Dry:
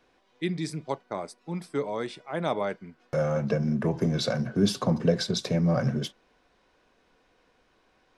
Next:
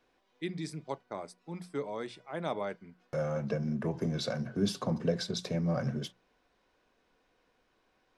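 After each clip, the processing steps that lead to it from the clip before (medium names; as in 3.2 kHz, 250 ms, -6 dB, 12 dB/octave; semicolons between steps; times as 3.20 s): hum notches 60/120/180 Hz; trim -6.5 dB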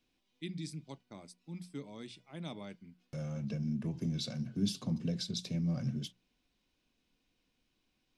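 high-order bell 850 Hz -13 dB 2.6 oct; trim -1.5 dB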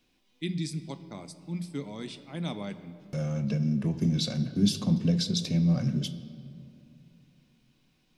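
reverberation RT60 2.6 s, pre-delay 5 ms, DRR 11.5 dB; trim +8 dB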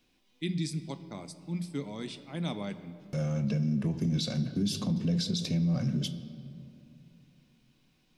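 peak limiter -21.5 dBFS, peak gain reduction 9 dB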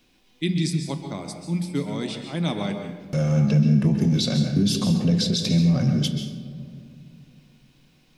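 plate-style reverb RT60 0.58 s, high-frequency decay 0.8×, pre-delay 120 ms, DRR 6 dB; trim +8.5 dB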